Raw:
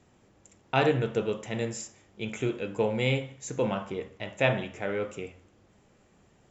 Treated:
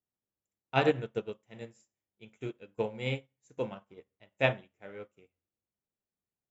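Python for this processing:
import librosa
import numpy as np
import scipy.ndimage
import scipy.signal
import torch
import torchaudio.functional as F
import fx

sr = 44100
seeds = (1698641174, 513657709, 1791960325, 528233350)

y = fx.upward_expand(x, sr, threshold_db=-44.0, expansion=2.5)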